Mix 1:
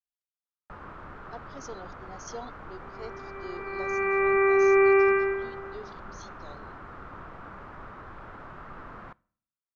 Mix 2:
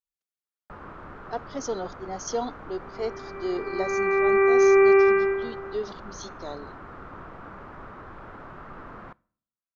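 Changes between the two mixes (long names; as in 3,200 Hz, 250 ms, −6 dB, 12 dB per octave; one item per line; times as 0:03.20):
speech +9.0 dB
master: add parametric band 330 Hz +3.5 dB 2.4 octaves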